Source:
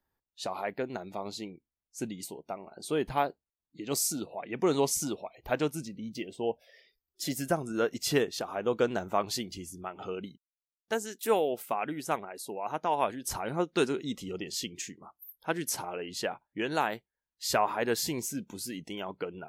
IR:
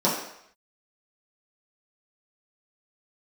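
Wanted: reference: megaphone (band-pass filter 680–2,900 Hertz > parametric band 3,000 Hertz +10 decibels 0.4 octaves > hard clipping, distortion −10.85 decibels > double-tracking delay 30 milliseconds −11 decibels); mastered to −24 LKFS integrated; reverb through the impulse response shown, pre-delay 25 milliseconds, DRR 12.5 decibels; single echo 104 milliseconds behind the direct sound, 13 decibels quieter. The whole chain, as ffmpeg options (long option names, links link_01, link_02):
-filter_complex "[0:a]aecho=1:1:104:0.224,asplit=2[link_01][link_02];[1:a]atrim=start_sample=2205,adelay=25[link_03];[link_02][link_03]afir=irnorm=-1:irlink=0,volume=-28dB[link_04];[link_01][link_04]amix=inputs=2:normalize=0,highpass=680,lowpass=2900,equalizer=frequency=3000:width_type=o:width=0.4:gain=10,asoftclip=type=hard:threshold=-26dB,asplit=2[link_05][link_06];[link_06]adelay=30,volume=-11dB[link_07];[link_05][link_07]amix=inputs=2:normalize=0,volume=13.5dB"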